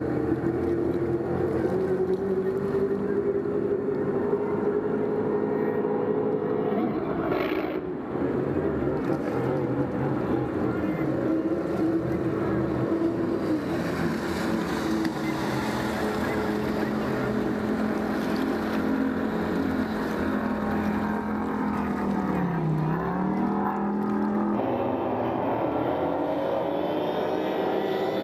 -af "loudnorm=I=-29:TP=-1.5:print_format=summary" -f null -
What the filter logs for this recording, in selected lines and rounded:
Input Integrated:    -26.8 LUFS
Input True Peak:     -12.0 dBTP
Input LRA:             0.9 LU
Input Threshold:     -36.8 LUFS